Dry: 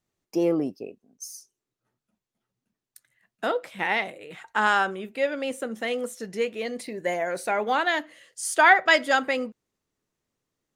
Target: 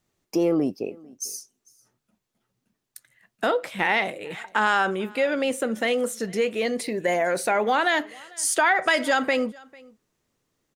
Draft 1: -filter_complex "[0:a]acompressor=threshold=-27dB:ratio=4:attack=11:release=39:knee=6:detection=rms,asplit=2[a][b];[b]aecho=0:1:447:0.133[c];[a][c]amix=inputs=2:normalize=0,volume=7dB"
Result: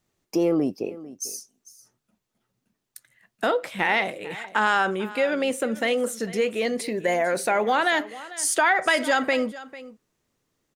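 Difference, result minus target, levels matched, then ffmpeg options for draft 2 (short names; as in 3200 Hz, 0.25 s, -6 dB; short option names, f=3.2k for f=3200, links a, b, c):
echo-to-direct +7.5 dB
-filter_complex "[0:a]acompressor=threshold=-27dB:ratio=4:attack=11:release=39:knee=6:detection=rms,asplit=2[a][b];[b]aecho=0:1:447:0.0562[c];[a][c]amix=inputs=2:normalize=0,volume=7dB"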